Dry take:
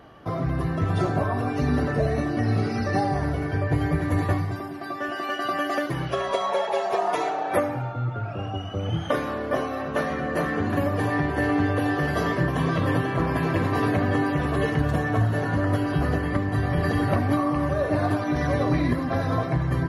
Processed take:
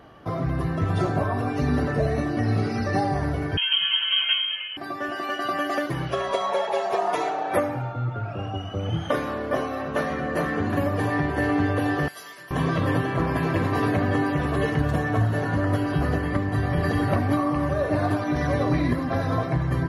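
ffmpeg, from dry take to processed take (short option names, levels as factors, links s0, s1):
-filter_complex "[0:a]asettb=1/sr,asplit=3[s0][s1][s2];[s0]atrim=end=3.574[s3];[s1]atrim=start=3.57:end=4.77,asetpts=PTS-STARTPTS,afade=t=in:d=0.004:c=qsin,afade=t=out:st=1.196:d=0.004:c=qsin,lowpass=f=2800:t=q:w=0.5098,lowpass=f=2800:t=q:w=0.6013,lowpass=f=2800:t=q:w=0.9,lowpass=f=2800:t=q:w=2.563,afreqshift=-3300[s4];[s2]atrim=start=4.766[s5];[s3][s4]acrossfade=d=0.004:c1=hsin:c2=qsin[s6];[s6][s5]acrossfade=d=0.004:c1=qsin:c2=hsin,asettb=1/sr,asplit=3[s7][s8][s9];[s7]atrim=end=12.084[s10];[s8]atrim=start=12.08:end=12.51,asetpts=PTS-STARTPTS,afade=t=in:d=0.004:c=qsin,afade=t=out:st=0.426:d=0.004:c=qsin,aderivative[s11];[s9]atrim=start=12.506[s12];[s10][s11]acrossfade=d=0.004:c1=hsin:c2=qsin[s13];[s13][s12]acrossfade=d=0.004:c1=qsin:c2=hsin"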